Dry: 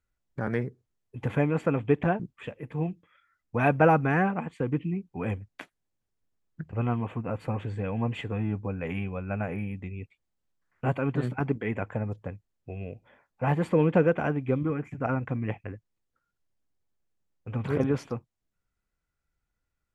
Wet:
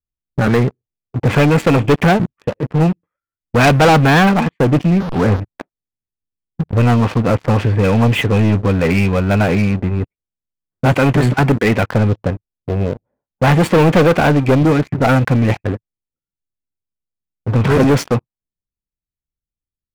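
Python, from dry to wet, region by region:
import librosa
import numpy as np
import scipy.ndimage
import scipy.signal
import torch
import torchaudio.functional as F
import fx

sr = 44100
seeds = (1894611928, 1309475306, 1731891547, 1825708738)

y = fx.chain(x, sr, fx.delta_mod(bps=16000, step_db=-34.0),
    fx.lowpass(hz=1700.0, slope=24), at=(5.0, 5.4))
y = fx.env_lowpass(y, sr, base_hz=370.0, full_db=-23.0)
y = fx.high_shelf(y, sr, hz=2700.0, db=4.5)
y = fx.leveller(y, sr, passes=5)
y = F.gain(torch.from_numpy(y), 1.5).numpy()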